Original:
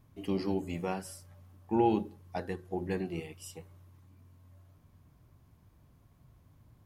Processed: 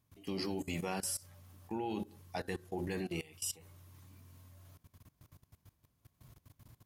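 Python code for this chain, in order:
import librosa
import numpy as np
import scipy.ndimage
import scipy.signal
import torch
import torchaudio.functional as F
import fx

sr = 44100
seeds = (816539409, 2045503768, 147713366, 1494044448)

y = scipy.signal.sosfilt(scipy.signal.butter(2, 46.0, 'highpass', fs=sr, output='sos'), x)
y = fx.high_shelf(y, sr, hz=2200.0, db=11.5)
y = fx.level_steps(y, sr, step_db=20)
y = F.gain(torch.from_numpy(y), 3.0).numpy()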